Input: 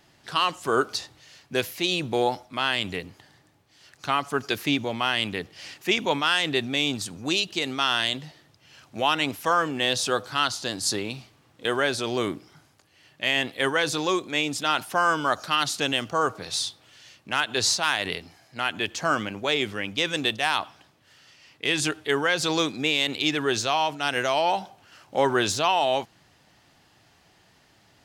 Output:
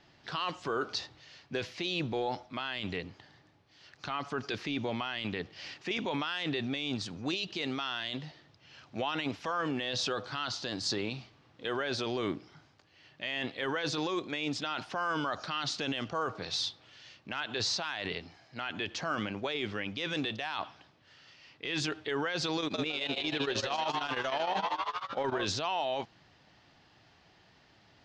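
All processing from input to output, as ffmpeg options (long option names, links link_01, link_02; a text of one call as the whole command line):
ffmpeg -i in.wav -filter_complex "[0:a]asettb=1/sr,asplit=3[link_01][link_02][link_03];[link_01]atrim=end=22.584[link_04];[link_02]atrim=start=22.58:end=25.45,asetpts=PTS-STARTPTS,afade=type=in:duration=0.004:curve=qsin,afade=type=out:start_time=2.866:duration=0.004:curve=qsin,acontrast=50,asplit=9[link_05][link_06][link_07][link_08][link_09][link_10][link_11][link_12][link_13];[link_06]adelay=159,afreqshift=120,volume=-7.5dB[link_14];[link_07]adelay=318,afreqshift=240,volume=-11.9dB[link_15];[link_08]adelay=477,afreqshift=360,volume=-16.4dB[link_16];[link_09]adelay=636,afreqshift=480,volume=-20.8dB[link_17];[link_10]adelay=795,afreqshift=600,volume=-25.2dB[link_18];[link_11]adelay=954,afreqshift=720,volume=-29.7dB[link_19];[link_12]adelay=1113,afreqshift=840,volume=-34.1dB[link_20];[link_13]adelay=1272,afreqshift=960,volume=-38.6dB[link_21];[link_05][link_14][link_15][link_16][link_17][link_18][link_19][link_20][link_21]amix=inputs=9:normalize=0,atrim=end_sample=126567,tremolo=f=13:d=0.91[link_22];[link_03]atrim=start=25.446[link_23];[link_04][link_22]acrossfade=duration=0.004:curve1=hsin:curve2=qsin[link_24];[link_24][link_23]acrossfade=duration=0.004:curve1=qsin:curve2=hsin,lowpass=frequency=5400:width=0.5412,lowpass=frequency=5400:width=1.3066,alimiter=limit=-20.5dB:level=0:latency=1:release=12,volume=-2.5dB" out.wav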